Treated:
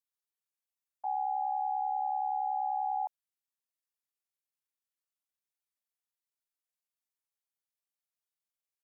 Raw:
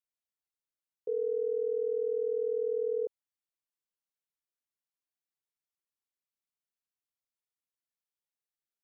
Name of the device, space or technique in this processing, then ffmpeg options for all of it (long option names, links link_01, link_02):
chipmunk voice: -af "bass=frequency=250:gain=-12,treble=frequency=4000:gain=4,asetrate=76340,aresample=44100,atempo=0.577676"